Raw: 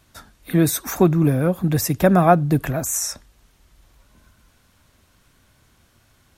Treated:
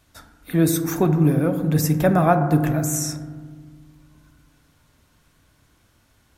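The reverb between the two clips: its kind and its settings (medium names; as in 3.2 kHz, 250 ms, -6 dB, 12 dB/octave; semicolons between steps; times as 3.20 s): FDN reverb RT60 1.6 s, low-frequency decay 1.6×, high-frequency decay 0.25×, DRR 6.5 dB; trim -3 dB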